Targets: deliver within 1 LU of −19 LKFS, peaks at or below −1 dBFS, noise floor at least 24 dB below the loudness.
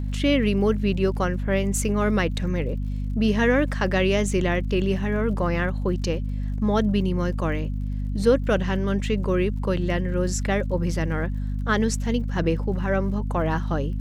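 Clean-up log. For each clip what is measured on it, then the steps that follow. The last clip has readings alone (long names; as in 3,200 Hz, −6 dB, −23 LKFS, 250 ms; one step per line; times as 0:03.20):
crackle rate 53 per second; mains hum 50 Hz; hum harmonics up to 250 Hz; level of the hum −24 dBFS; integrated loudness −24.0 LKFS; sample peak −7.5 dBFS; target loudness −19.0 LKFS
→ click removal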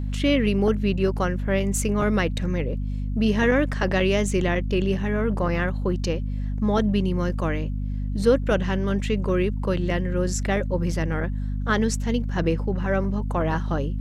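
crackle rate 1.1 per second; mains hum 50 Hz; hum harmonics up to 250 Hz; level of the hum −24 dBFS
→ hum removal 50 Hz, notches 5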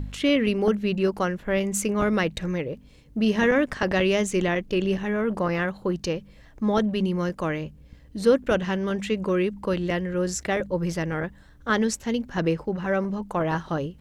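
mains hum none found; integrated loudness −25.0 LKFS; sample peak −9.0 dBFS; target loudness −19.0 LKFS
→ level +6 dB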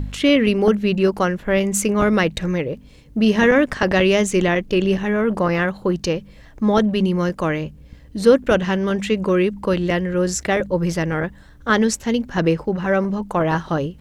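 integrated loudness −19.0 LKFS; sample peak −3.0 dBFS; background noise floor −45 dBFS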